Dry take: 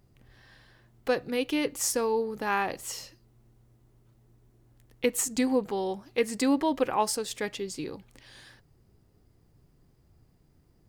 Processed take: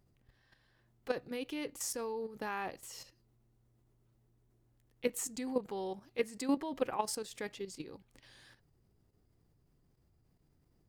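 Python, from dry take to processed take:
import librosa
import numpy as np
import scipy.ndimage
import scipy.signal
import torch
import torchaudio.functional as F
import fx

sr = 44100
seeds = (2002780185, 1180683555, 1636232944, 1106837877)

y = fx.level_steps(x, sr, step_db=11)
y = F.gain(torch.from_numpy(y), -5.0).numpy()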